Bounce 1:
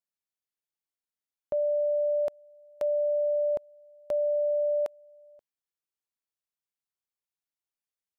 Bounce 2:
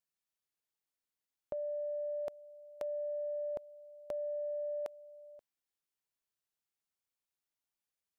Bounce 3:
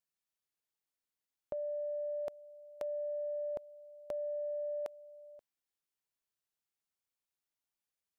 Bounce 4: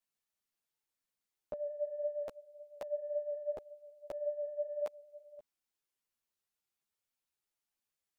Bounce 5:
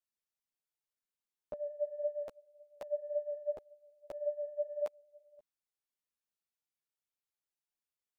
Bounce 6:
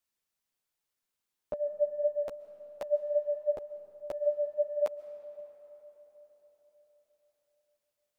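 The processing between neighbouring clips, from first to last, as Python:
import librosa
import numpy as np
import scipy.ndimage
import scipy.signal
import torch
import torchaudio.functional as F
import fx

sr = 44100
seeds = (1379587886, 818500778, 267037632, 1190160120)

y1 = fx.over_compress(x, sr, threshold_db=-32.0, ratio=-1.0)
y1 = F.gain(torch.from_numpy(y1), -5.5).numpy()
y2 = y1
y3 = fx.ensemble(y2, sr)
y3 = F.gain(torch.from_numpy(y3), 4.0).numpy()
y4 = fx.upward_expand(y3, sr, threshold_db=-51.0, expansion=1.5)
y4 = F.gain(torch.from_numpy(y4), 2.0).numpy()
y5 = fx.rev_freeverb(y4, sr, rt60_s=4.8, hf_ratio=0.55, predelay_ms=95, drr_db=13.5)
y5 = F.gain(torch.from_numpy(y5), 7.0).numpy()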